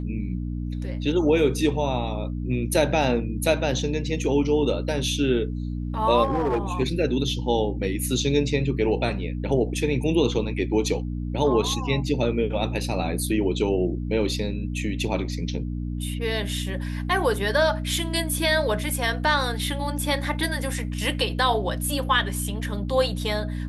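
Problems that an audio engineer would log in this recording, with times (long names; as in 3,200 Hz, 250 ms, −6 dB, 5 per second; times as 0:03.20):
mains hum 60 Hz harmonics 5 −29 dBFS
0:06.23–0:06.72: clipping −19 dBFS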